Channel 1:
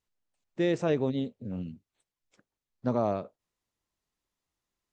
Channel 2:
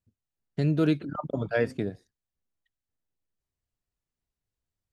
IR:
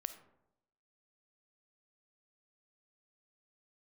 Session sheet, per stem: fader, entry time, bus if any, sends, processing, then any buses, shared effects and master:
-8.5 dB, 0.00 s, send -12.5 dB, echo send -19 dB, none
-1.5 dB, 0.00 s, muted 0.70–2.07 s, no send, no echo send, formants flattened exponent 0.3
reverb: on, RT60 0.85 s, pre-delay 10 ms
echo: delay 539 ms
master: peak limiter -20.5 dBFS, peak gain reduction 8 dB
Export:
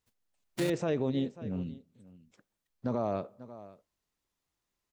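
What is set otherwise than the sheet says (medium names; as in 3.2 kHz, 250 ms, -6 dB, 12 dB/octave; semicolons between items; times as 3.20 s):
stem 1 -8.5 dB -> -1.0 dB; stem 2 -1.5 dB -> -9.0 dB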